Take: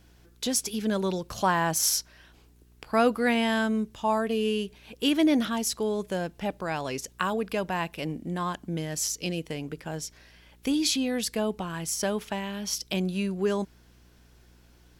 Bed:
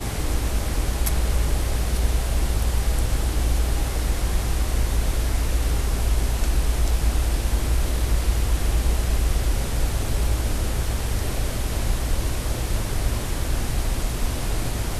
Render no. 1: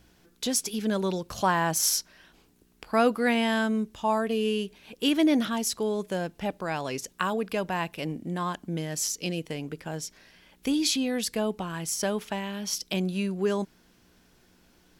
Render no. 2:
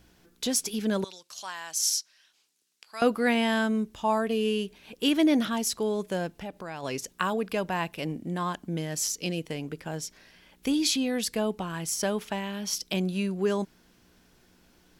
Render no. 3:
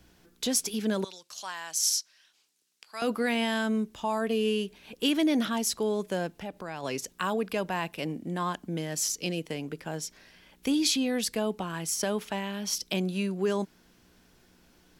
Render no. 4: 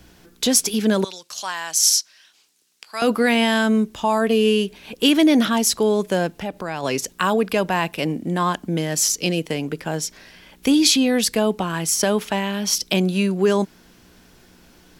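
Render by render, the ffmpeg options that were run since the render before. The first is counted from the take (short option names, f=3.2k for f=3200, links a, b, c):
-af "bandreject=f=60:t=h:w=4,bandreject=f=120:t=h:w=4"
-filter_complex "[0:a]asettb=1/sr,asplit=3[a][b][c];[a]atrim=end=1.044[d];[b]atrim=start=1.04:end=3.02,asetpts=PTS-STARTPTS,afade=t=in:d=0.004:c=qsin,afade=t=out:st=1.976:d=0.004:c=qsin,bandpass=f=6k:t=q:w=0.86[e];[c]atrim=start=3.016[f];[d][e]acrossfade=d=0.004:c1=hsin:c2=qsin[g];[g][f]acrossfade=d=0.004:c1=qsin:c2=hsin,asplit=3[h][i][j];[h]afade=t=out:st=6.33:d=0.02[k];[i]acompressor=threshold=-39dB:ratio=2:attack=3.2:release=140:knee=1:detection=peak,afade=t=in:st=6.33:d=0.02,afade=t=out:st=6.82:d=0.02[l];[j]afade=t=in:st=6.82:d=0.02[m];[k][l][m]amix=inputs=3:normalize=0"
-filter_complex "[0:a]acrossover=split=140|2500[a][b][c];[a]acompressor=threshold=-52dB:ratio=6[d];[b]alimiter=limit=-19.5dB:level=0:latency=1:release=25[e];[d][e][c]amix=inputs=3:normalize=0"
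-af "volume=10dB"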